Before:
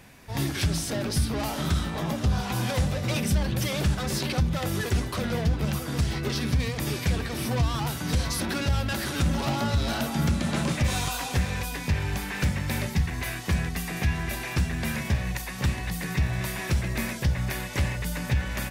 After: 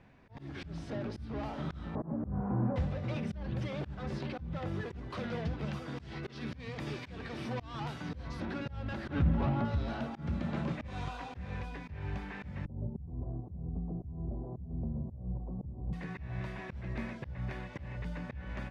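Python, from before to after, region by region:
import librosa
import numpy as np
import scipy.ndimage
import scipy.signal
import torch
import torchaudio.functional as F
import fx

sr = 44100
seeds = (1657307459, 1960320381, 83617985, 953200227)

y = fx.chain(x, sr, fx.cvsd(bps=16000),
    fx.lowpass(hz=1300.0, slope=24),
    fx.peak_eq(hz=230.0, db=9.0, octaves=2.2), at=(1.95, 2.76))
y = fx.chain(y, sr, fx.highpass(hz=120.0, slope=6),
    fx.high_shelf(hz=2100.0, db=8.0), at=(5.1, 8.09))
y = fx.chain(y, sr, fx.bass_treble(bass_db=6, treble_db=-13),
    fx.pre_swell(db_per_s=22.0), at=(9.08, 9.65))
y = fx.chain(y, sr, fx.gaussian_blur(sigma=14.0),
    fx.band_squash(depth_pct=100), at=(12.65, 15.93))
y = scipy.signal.sosfilt(scipy.signal.butter(2, 4000.0, 'lowpass', fs=sr, output='sos'), y)
y = fx.high_shelf(y, sr, hz=2400.0, db=-12.0)
y = fx.auto_swell(y, sr, attack_ms=201.0)
y = F.gain(torch.from_numpy(y), -7.5).numpy()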